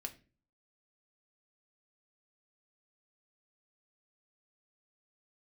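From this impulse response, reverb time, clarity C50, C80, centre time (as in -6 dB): not exponential, 15.5 dB, 20.5 dB, 6 ms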